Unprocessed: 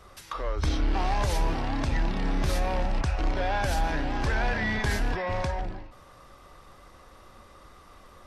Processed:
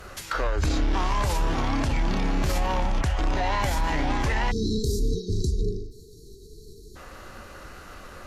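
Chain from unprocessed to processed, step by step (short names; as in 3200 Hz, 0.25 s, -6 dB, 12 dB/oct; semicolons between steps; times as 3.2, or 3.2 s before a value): vocal rider within 4 dB 2 s; spectral delete 4.51–6.96, 460–3100 Hz; limiter -23.5 dBFS, peak gain reduction 7.5 dB; formant shift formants +3 st; gain +6.5 dB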